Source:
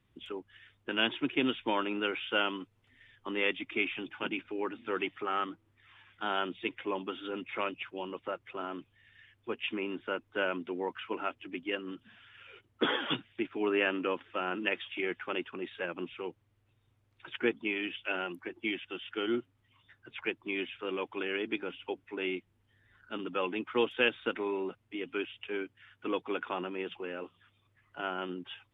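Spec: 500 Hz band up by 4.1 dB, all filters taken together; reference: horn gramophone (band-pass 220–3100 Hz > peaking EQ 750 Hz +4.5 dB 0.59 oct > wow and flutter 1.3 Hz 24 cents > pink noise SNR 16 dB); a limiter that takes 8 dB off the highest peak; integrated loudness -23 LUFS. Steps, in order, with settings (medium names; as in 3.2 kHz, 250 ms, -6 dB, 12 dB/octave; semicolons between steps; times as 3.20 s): peaking EQ 500 Hz +4.5 dB; peak limiter -21 dBFS; band-pass 220–3100 Hz; peaking EQ 750 Hz +4.5 dB 0.59 oct; wow and flutter 1.3 Hz 24 cents; pink noise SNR 16 dB; trim +12 dB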